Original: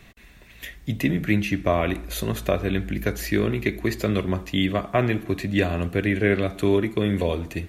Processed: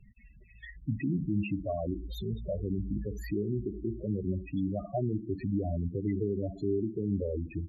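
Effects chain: dynamic EQ 2200 Hz, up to -4 dB, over -40 dBFS, Q 1.7; limiter -17 dBFS, peak gain reduction 8 dB; loudest bins only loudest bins 8; gain -3.5 dB

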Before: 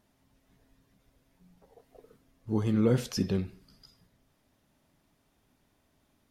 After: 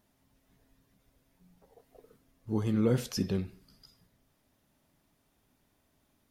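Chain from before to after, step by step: high shelf 11000 Hz +7 dB; gain -2 dB

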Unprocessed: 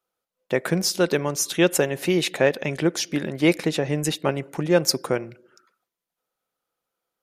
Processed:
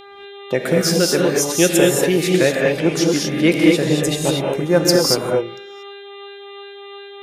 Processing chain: buzz 400 Hz, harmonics 10, -43 dBFS -3 dB/oct; LFO notch sine 2.8 Hz 770–3200 Hz; non-linear reverb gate 0.26 s rising, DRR -1.5 dB; gain +3 dB

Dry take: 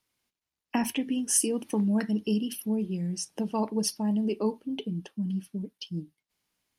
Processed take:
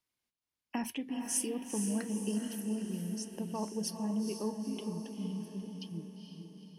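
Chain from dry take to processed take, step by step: diffused feedback echo 0.466 s, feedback 53%, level -6 dB; gain -8.5 dB

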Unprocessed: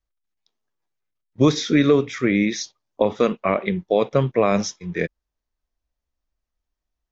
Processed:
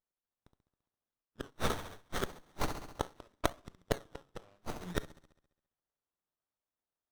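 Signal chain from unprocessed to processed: flipped gate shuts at -13 dBFS, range -38 dB; 3.12–3.55 comb 3.1 ms, depth 55%; on a send: thin delay 68 ms, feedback 61%, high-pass 3600 Hz, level -6 dB; on the sum: shoebox room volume 350 m³, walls furnished, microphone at 0.33 m; in parallel at -8 dB: decimation with a swept rate 23×, swing 100% 0.75 Hz; on the sum: differentiator; 1.5–2.46 gate -56 dBFS, range -9 dB; low-pass opened by the level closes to 2800 Hz, open at -43 dBFS; running maximum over 17 samples; gain +10 dB

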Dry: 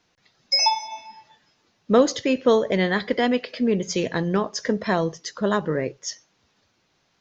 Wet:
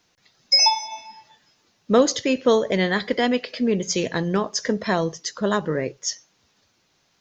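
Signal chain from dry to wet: high shelf 5800 Hz +9.5 dB

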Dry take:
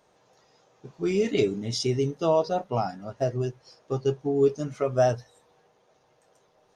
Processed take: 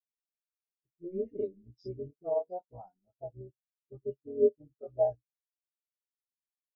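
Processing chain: AM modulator 180 Hz, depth 85%; dispersion highs, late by 58 ms, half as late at 1800 Hz; spectral expander 2.5:1

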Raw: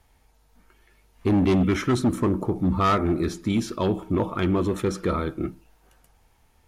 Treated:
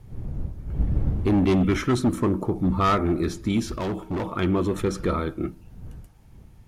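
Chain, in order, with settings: wind noise 97 Hz -32 dBFS; 3.71–4.33 hard clip -24.5 dBFS, distortion -18 dB

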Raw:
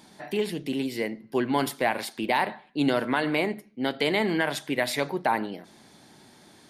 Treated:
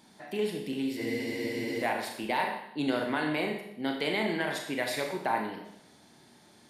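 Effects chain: Schroeder reverb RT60 0.77 s, combs from 26 ms, DRR 2 dB; spectral freeze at 1.01, 0.82 s; gain -6.5 dB

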